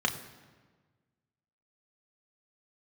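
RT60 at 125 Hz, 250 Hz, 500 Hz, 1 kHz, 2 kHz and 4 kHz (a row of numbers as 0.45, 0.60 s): 1.9, 1.7, 1.5, 1.4, 1.3, 1.0 s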